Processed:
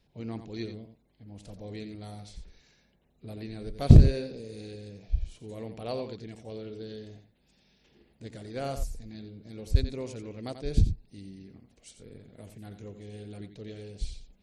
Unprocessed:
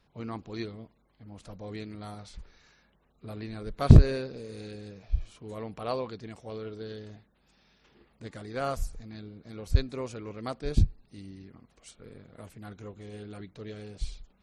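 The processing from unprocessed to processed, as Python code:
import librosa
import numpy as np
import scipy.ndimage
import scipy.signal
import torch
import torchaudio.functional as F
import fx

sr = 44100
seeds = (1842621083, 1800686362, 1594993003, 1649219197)

y = fx.peak_eq(x, sr, hz=1200.0, db=-12.5, octaves=0.91)
y = y + 10.0 ** (-9.5 / 20.0) * np.pad(y, (int(88 * sr / 1000.0), 0))[:len(y)]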